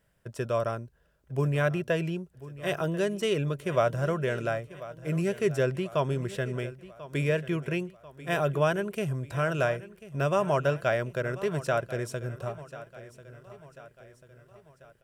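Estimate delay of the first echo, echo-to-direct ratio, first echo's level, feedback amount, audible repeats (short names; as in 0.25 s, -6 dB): 1.041 s, -15.5 dB, -16.5 dB, 50%, 4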